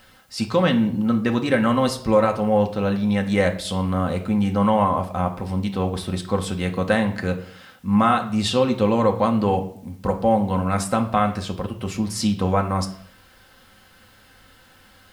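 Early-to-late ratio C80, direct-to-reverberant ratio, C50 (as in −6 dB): 16.5 dB, 2.5 dB, 12.5 dB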